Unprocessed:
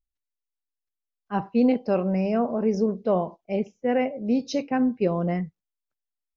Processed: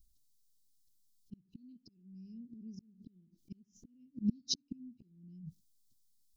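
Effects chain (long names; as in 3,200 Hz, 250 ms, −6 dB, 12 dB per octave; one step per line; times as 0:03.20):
gate with flip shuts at −19 dBFS, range −38 dB
inverse Chebyshev band-stop filter 550–2,000 Hz, stop band 50 dB
volume swells 508 ms
level +16.5 dB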